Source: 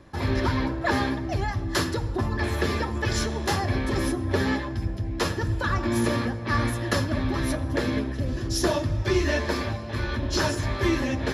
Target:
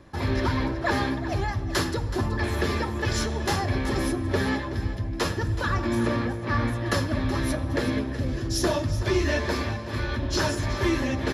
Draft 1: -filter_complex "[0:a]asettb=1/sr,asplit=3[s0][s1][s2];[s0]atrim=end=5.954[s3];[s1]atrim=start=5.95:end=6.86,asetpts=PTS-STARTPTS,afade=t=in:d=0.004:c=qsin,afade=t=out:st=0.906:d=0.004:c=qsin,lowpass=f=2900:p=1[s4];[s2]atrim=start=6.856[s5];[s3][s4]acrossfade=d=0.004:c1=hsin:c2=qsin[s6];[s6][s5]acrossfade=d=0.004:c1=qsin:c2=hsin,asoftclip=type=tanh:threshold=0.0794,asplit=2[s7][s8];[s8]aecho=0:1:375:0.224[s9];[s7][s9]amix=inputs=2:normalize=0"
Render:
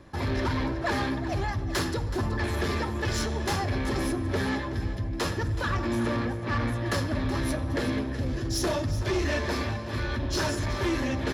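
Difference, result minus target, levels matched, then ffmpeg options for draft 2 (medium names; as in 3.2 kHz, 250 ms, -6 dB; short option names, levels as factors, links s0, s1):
saturation: distortion +15 dB
-filter_complex "[0:a]asettb=1/sr,asplit=3[s0][s1][s2];[s0]atrim=end=5.954[s3];[s1]atrim=start=5.95:end=6.86,asetpts=PTS-STARTPTS,afade=t=in:d=0.004:c=qsin,afade=t=out:st=0.906:d=0.004:c=qsin,lowpass=f=2900:p=1[s4];[s2]atrim=start=6.856[s5];[s3][s4]acrossfade=d=0.004:c1=hsin:c2=qsin[s6];[s6][s5]acrossfade=d=0.004:c1=qsin:c2=hsin,asoftclip=type=tanh:threshold=0.266,asplit=2[s7][s8];[s8]aecho=0:1:375:0.224[s9];[s7][s9]amix=inputs=2:normalize=0"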